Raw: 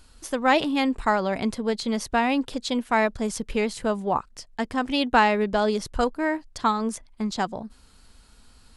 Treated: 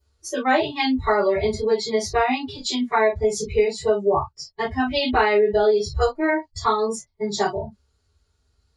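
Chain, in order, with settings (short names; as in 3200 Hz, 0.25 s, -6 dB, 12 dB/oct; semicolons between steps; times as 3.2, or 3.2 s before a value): reverb, pre-delay 3 ms, DRR -11 dB; compressor 3:1, threshold -8 dBFS, peak gain reduction 7.5 dB; spectral noise reduction 21 dB; gain -8 dB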